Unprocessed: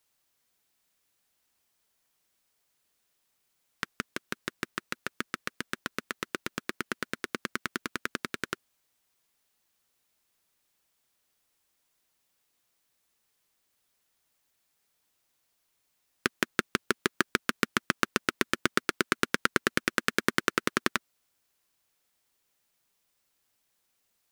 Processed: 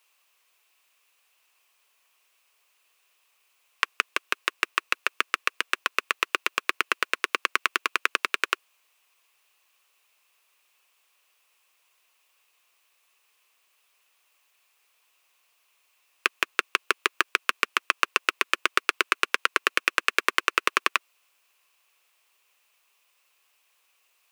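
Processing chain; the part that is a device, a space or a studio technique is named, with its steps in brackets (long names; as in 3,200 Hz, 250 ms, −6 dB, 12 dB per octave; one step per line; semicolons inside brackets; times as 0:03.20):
laptop speaker (high-pass filter 410 Hz 24 dB per octave; parametric band 1,100 Hz +9 dB 0.34 octaves; parametric band 2,600 Hz +12 dB 0.5 octaves; brickwall limiter −6.5 dBFS, peak gain reduction 6.5 dB)
level +5.5 dB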